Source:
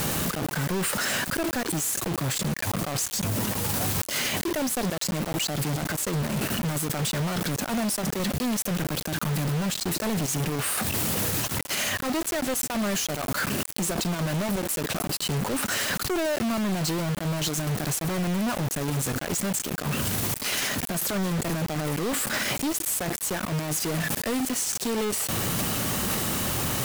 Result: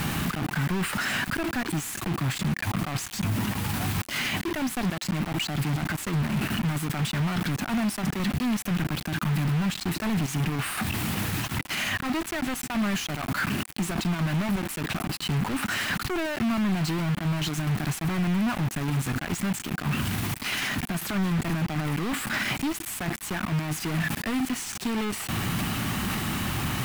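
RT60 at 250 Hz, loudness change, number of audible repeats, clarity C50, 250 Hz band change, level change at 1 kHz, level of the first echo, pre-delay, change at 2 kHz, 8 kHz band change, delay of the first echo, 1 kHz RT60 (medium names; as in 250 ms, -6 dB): no reverb, -1.5 dB, no echo, no reverb, +1.5 dB, -0.5 dB, no echo, no reverb, +1.0 dB, -8.0 dB, no echo, no reverb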